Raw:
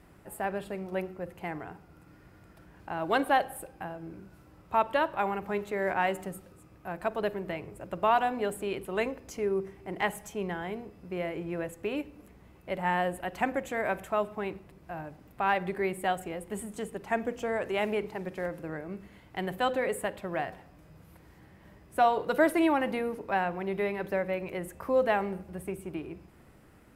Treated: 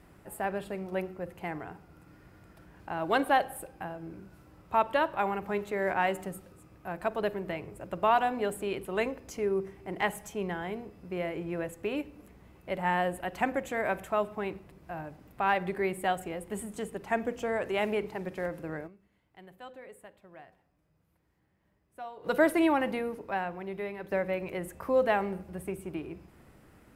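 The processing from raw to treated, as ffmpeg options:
-filter_complex "[0:a]asplit=4[a][b][c][d];[a]atrim=end=19.04,asetpts=PTS-STARTPTS,afade=t=out:st=18.86:d=0.18:c=exp:silence=0.11885[e];[b]atrim=start=19.04:end=22.08,asetpts=PTS-STARTPTS,volume=-18.5dB[f];[c]atrim=start=22.08:end=24.11,asetpts=PTS-STARTPTS,afade=t=in:d=0.18:c=exp:silence=0.11885,afade=t=out:st=0.73:d=1.3:c=qua:silence=0.473151[g];[d]atrim=start=24.11,asetpts=PTS-STARTPTS,afade=t=in:d=0.004:c=hsin:silence=0.473151[h];[e][f][g][h]concat=n=4:v=0:a=1"

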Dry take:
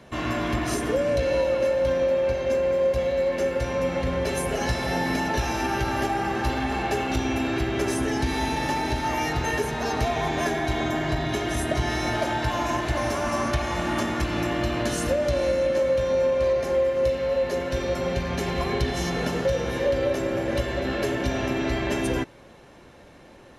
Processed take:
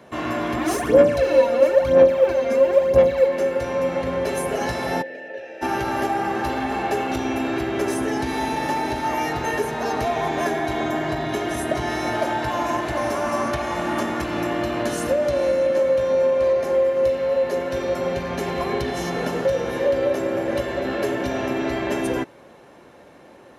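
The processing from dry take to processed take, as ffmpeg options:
-filter_complex "[0:a]asplit=3[a][b][c];[a]afade=t=out:st=0.58:d=0.02[d];[b]aphaser=in_gain=1:out_gain=1:delay=4.3:decay=0.67:speed=1:type=sinusoidal,afade=t=in:st=0.58:d=0.02,afade=t=out:st=3.26:d=0.02[e];[c]afade=t=in:st=3.26:d=0.02[f];[d][e][f]amix=inputs=3:normalize=0,asplit=3[g][h][i];[g]afade=t=out:st=5.01:d=0.02[j];[h]asplit=3[k][l][m];[k]bandpass=f=530:t=q:w=8,volume=0dB[n];[l]bandpass=f=1.84k:t=q:w=8,volume=-6dB[o];[m]bandpass=f=2.48k:t=q:w=8,volume=-9dB[p];[n][o][p]amix=inputs=3:normalize=0,afade=t=in:st=5.01:d=0.02,afade=t=out:st=5.61:d=0.02[q];[i]afade=t=in:st=5.61:d=0.02[r];[j][q][r]amix=inputs=3:normalize=0,highpass=f=320:p=1,equalizer=f=4.7k:w=0.36:g=-7.5,volume=5.5dB"

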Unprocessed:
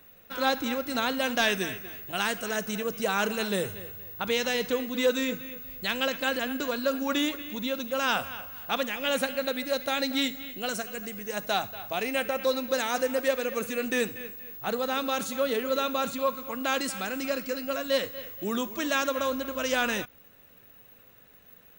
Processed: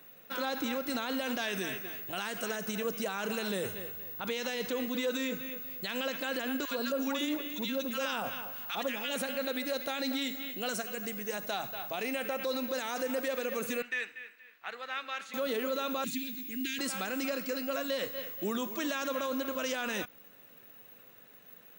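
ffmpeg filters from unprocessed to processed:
-filter_complex "[0:a]asettb=1/sr,asplit=3[a][b][c];[a]atrim=end=6.654[d];[b]atrim=start=6.65:end=9.16,asetpts=PTS-STARTPTS,afade=t=in:d=0.004:c=qsin,afade=t=out:st=2.506:d=0.004:c=qsin,acrossover=split=1200[e][f];[e]adelay=60[g];[g][f]amix=inputs=2:normalize=0,atrim=end_sample=110691[h];[c]atrim=start=9.156[i];[d][h]acrossfade=d=0.004:c1=hsin:c2=qsin[j];[j][i]acrossfade=d=0.004:c1=qsin:c2=hsin,asettb=1/sr,asplit=3[k][l][m];[k]atrim=end=13.824[n];[l]atrim=start=13.82:end=15.34,asetpts=PTS-STARTPTS,afade=t=in:d=0.004:c=qsin,afade=t=out:st=1.516:d=0.004:c=qsin,bandpass=f=2k:t=q:w=2[o];[m]atrim=start=15.336[p];[n][o]acrossfade=d=0.004:c1=hsin:c2=qsin[q];[q][p]acrossfade=d=0.004:c1=qsin:c2=hsin,asettb=1/sr,asplit=3[r][s][t];[r]atrim=end=16.044[u];[s]atrim=start=16.04:end=16.79,asetpts=PTS-STARTPTS,afade=t=in:d=0.004:c=qsin,afade=t=out:st=0.746:d=0.004:c=qsin,asuperstop=centerf=820:order=12:qfactor=0.59[v];[t]atrim=start=16.786[w];[u][v]acrossfade=d=0.004:c1=hsin:c2=qsin[x];[x][w]acrossfade=d=0.004:c1=qsin:c2=hsin,highpass=150,alimiter=level_in=0.5dB:limit=-24dB:level=0:latency=1:release=48,volume=-0.5dB"

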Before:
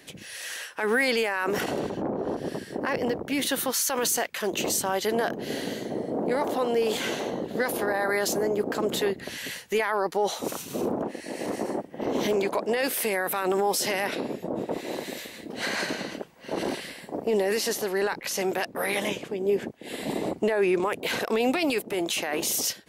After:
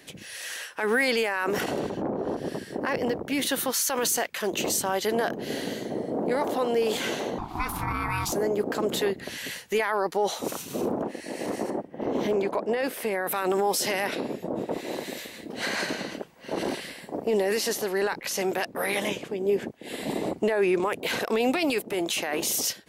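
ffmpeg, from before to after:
-filter_complex "[0:a]asettb=1/sr,asplit=3[a][b][c];[a]atrim=end=7.384[d];[b]atrim=start=7.38:end=8.32,asetpts=PTS-STARTPTS,afade=t=in:d=0.004:c=qsin,afade=t=out:st=0.936:d=0.004:c=qsin,aeval=exprs='val(0)*sin(2*PI*530*n/s)':c=same[e];[c]atrim=start=8.316[f];[d][e]acrossfade=d=0.004:c1=hsin:c2=qsin[g];[g][f]acrossfade=d=0.004:c1=qsin:c2=hsin,asettb=1/sr,asplit=3[h][i][j];[h]atrim=end=11.704[k];[i]atrim=start=11.7:end=13.27,asetpts=PTS-STARTPTS,afade=t=in:d=0.004:c=qsin,afade=t=out:st=1.566:d=0.004:c=qsin,highshelf=f=2.7k:g=-10.5[l];[j]atrim=start=13.266[m];[k][l]acrossfade=d=0.004:c1=hsin:c2=qsin[n];[n][m]acrossfade=d=0.004:c1=qsin:c2=hsin"

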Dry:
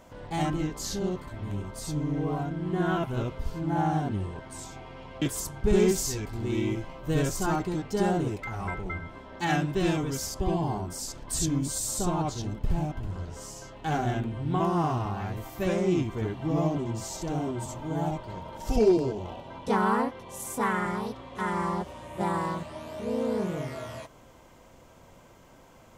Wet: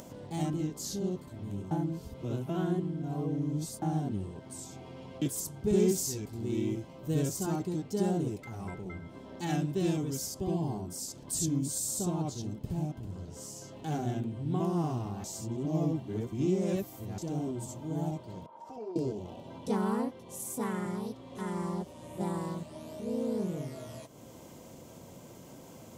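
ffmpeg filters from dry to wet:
-filter_complex "[0:a]asettb=1/sr,asplit=3[a][b][c];[a]atrim=end=18.464[d];[b]atrim=start=18.46:end=18.96,asetpts=PTS-STARTPTS,afade=t=in:d=0.004:c=qsin,afade=t=out:st=0.496:d=0.004:c=qsin,bandpass=f=1k:t=q:w=3[e];[c]atrim=start=18.956[f];[d][e]acrossfade=d=0.004:c1=hsin:c2=qsin[g];[g][f]acrossfade=d=0.004:c1=qsin:c2=hsin,asplit=5[h][i][j][k][l];[h]atrim=end=1.712[m];[i]atrim=start=1.708:end=3.822,asetpts=PTS-STARTPTS,areverse[n];[j]atrim=start=3.818:end=15.242[o];[k]atrim=start=15.238:end=17.182,asetpts=PTS-STARTPTS,areverse[p];[l]atrim=start=17.178[q];[m][n]acrossfade=d=0.004:c1=hsin:c2=hsin[r];[r][o]acrossfade=d=0.004:c1=hsin:c2=hsin[s];[s][p]acrossfade=d=0.004:c1=hsin:c2=hsin[t];[t][q]acrossfade=d=0.004:c1=hsin:c2=hsin,highpass=130,equalizer=f=1.5k:w=0.48:g=-14,acompressor=mode=upward:threshold=-39dB:ratio=2.5"

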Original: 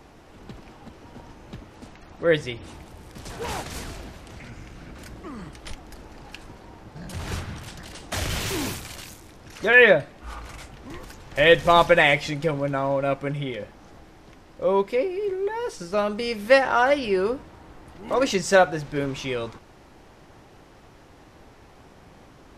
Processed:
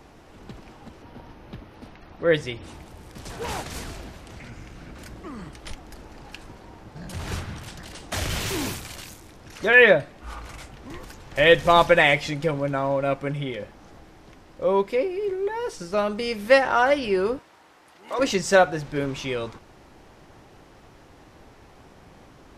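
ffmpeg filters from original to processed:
-filter_complex "[0:a]asettb=1/sr,asplit=3[a][b][c];[a]atrim=end=1.024[d];[b]atrim=start=1.02:end=2.34,asetpts=PTS-STARTPTS,afade=t=in:d=0.004:c=qsin,afade=t=out:st=1.316:d=0.004:c=qsin,equalizer=f=7.5k:t=o:w=0.52:g=-14.5[e];[c]atrim=start=2.336[f];[d][e]acrossfade=d=0.004:c1=hsin:c2=qsin[g];[g][f]acrossfade=d=0.004:c1=qsin:c2=hsin,asettb=1/sr,asplit=3[h][i][j];[h]atrim=end=17.394[k];[i]atrim=start=17.39:end=18.19,asetpts=PTS-STARTPTS,afade=t=in:d=0.004:c=qsin,afade=t=out:st=0.796:d=0.004:c=qsin,highpass=f=1.1k:p=1[l];[j]atrim=start=18.186[m];[k][l]acrossfade=d=0.004:c1=hsin:c2=qsin[n];[n][m]acrossfade=d=0.004:c1=qsin:c2=hsin"

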